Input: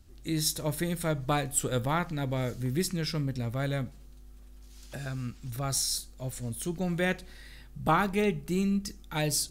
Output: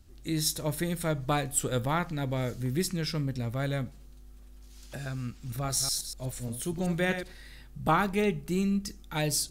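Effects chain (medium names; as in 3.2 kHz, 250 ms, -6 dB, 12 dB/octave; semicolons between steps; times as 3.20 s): 5.28–7.32 s: chunks repeated in reverse 122 ms, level -8 dB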